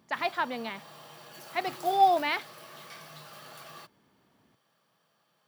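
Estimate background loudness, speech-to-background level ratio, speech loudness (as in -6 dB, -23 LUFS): -46.5 LUFS, 18.0 dB, -28.5 LUFS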